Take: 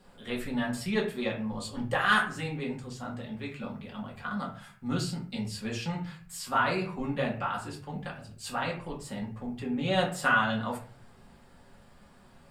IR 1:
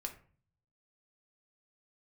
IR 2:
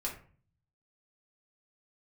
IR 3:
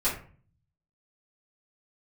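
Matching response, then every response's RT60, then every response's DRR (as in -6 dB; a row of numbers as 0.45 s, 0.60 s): 2; 0.45 s, 0.45 s, 0.45 s; 3.0 dB, -3.5 dB, -11.5 dB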